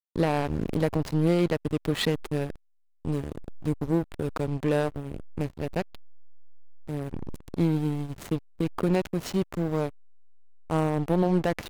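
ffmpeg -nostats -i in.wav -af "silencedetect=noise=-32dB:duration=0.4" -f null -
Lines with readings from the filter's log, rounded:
silence_start: 2.50
silence_end: 3.05 | silence_duration: 0.55
silence_start: 5.95
silence_end: 6.89 | silence_duration: 0.94
silence_start: 9.89
silence_end: 10.70 | silence_duration: 0.81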